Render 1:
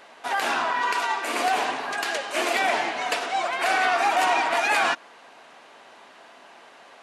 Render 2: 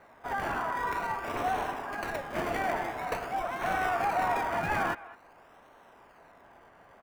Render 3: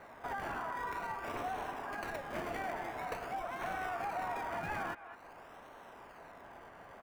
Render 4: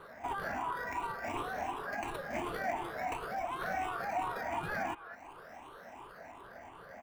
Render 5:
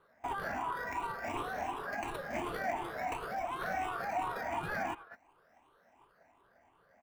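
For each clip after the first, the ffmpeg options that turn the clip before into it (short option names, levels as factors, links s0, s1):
-filter_complex "[0:a]acrossover=split=220|2200[s0][s1][s2];[s1]aecho=1:1:208:0.133[s3];[s2]acrusher=samples=26:mix=1:aa=0.000001:lfo=1:lforange=15.6:lforate=0.48[s4];[s0][s3][s4]amix=inputs=3:normalize=0,volume=0.473"
-af "acompressor=threshold=0.00562:ratio=2.5,volume=1.41"
-af "afftfilt=real='re*pow(10,14/40*sin(2*PI*(0.64*log(max(b,1)*sr/1024/100)/log(2)-(2.8)*(pts-256)/sr)))':imag='im*pow(10,14/40*sin(2*PI*(0.64*log(max(b,1)*sr/1024/100)/log(2)-(2.8)*(pts-256)/sr)))':win_size=1024:overlap=0.75"
-af "agate=range=0.158:threshold=0.00501:ratio=16:detection=peak"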